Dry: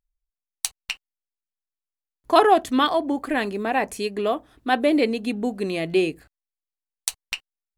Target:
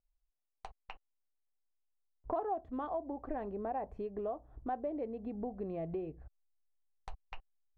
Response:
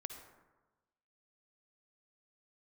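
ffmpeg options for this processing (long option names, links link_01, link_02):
-af "lowpass=frequency=750:width_type=q:width=1.5,acompressor=threshold=-33dB:ratio=4,asubboost=boost=8.5:cutoff=88,volume=-3dB"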